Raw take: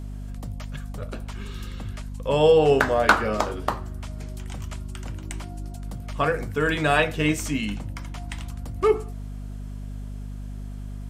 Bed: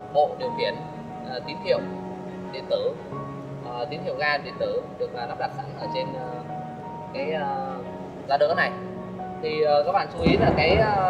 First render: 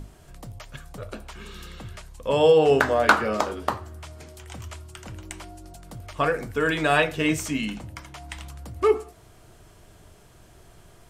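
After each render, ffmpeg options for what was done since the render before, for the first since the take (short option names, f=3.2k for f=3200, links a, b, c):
-af "bandreject=f=50:t=h:w=6,bandreject=f=100:t=h:w=6,bandreject=f=150:t=h:w=6,bandreject=f=200:t=h:w=6,bandreject=f=250:t=h:w=6"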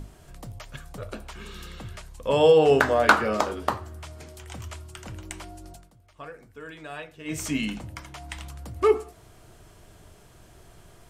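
-filter_complex "[0:a]asplit=3[a][b][c];[a]atrim=end=5.91,asetpts=PTS-STARTPTS,afade=t=out:st=5.71:d=0.2:silence=0.125893[d];[b]atrim=start=5.91:end=7.25,asetpts=PTS-STARTPTS,volume=-18dB[e];[c]atrim=start=7.25,asetpts=PTS-STARTPTS,afade=t=in:d=0.2:silence=0.125893[f];[d][e][f]concat=n=3:v=0:a=1"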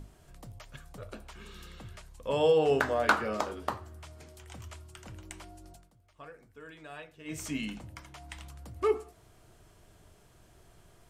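-af "volume=-7.5dB"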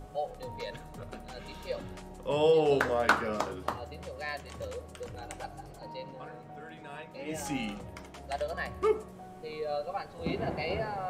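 -filter_complex "[1:a]volume=-14dB[a];[0:a][a]amix=inputs=2:normalize=0"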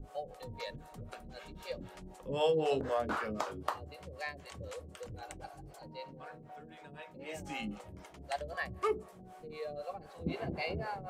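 -filter_complex "[0:a]acrossover=split=440[a][b];[a]aeval=exprs='val(0)*(1-1/2+1/2*cos(2*PI*3.9*n/s))':c=same[c];[b]aeval=exprs='val(0)*(1-1/2-1/2*cos(2*PI*3.9*n/s))':c=same[d];[c][d]amix=inputs=2:normalize=0"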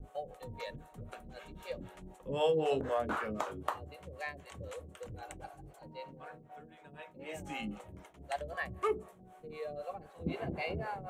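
-af "agate=range=-33dB:threshold=-48dB:ratio=3:detection=peak,equalizer=f=4.9k:w=3:g=-10.5"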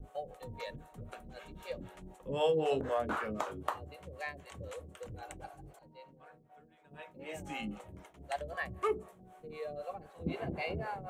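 -filter_complex "[0:a]asplit=3[a][b][c];[a]atrim=end=5.792[d];[b]atrim=start=5.788:end=6.912,asetpts=PTS-STARTPTS,volume=-8dB[e];[c]atrim=start=6.908[f];[d][e]acrossfade=d=0.004:c1=hsin:c2=hsin[g];[g][f]acrossfade=d=0.004:c1=hsin:c2=hsin"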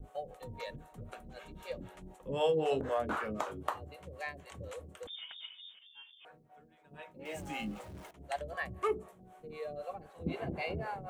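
-filter_complex "[0:a]asettb=1/sr,asplit=3[a][b][c];[a]atrim=end=5.074[d];[b]atrim=start=5.07:end=6.25,asetpts=PTS-STARTPTS,afade=t=in:d=0.004:c=qsin,afade=t=out:st=1.176:d=0.004:c=qsin,lowpass=f=3.1k:t=q:w=0.5098,lowpass=f=3.1k:t=q:w=0.6013,lowpass=f=3.1k:t=q:w=0.9,lowpass=f=3.1k:t=q:w=2.563,afreqshift=-3700[e];[c]atrim=start=6.246[f];[d][e]acrossfade=d=0.004:c1=hsin:c2=qsin[g];[g][f]acrossfade=d=0.004:c1=qsin:c2=hsin,asettb=1/sr,asplit=3[h][i][j];[h]atrim=end=7.254[k];[i]atrim=start=7.25:end=8.11,asetpts=PTS-STARTPTS,afade=t=in:d=0.004:c=qsin,afade=t=out:st=0.856:d=0.004:c=qsin,aeval=exprs='val(0)+0.5*0.00299*sgn(val(0))':c=same[l];[j]atrim=start=8.106[m];[k][l]acrossfade=d=0.004:c1=hsin:c2=qsin[n];[n][m]acrossfade=d=0.004:c1=qsin:c2=hsin"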